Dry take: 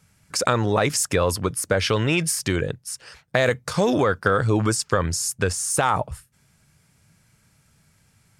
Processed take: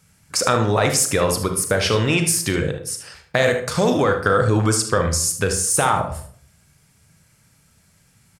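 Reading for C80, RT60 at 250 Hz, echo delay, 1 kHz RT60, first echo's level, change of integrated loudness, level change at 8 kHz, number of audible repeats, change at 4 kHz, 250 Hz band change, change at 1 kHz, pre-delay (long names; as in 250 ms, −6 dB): 12.5 dB, 0.70 s, 75 ms, 0.50 s, −11.5 dB, +3.0 dB, +5.0 dB, 1, +3.5 dB, +2.5 dB, +2.5 dB, 31 ms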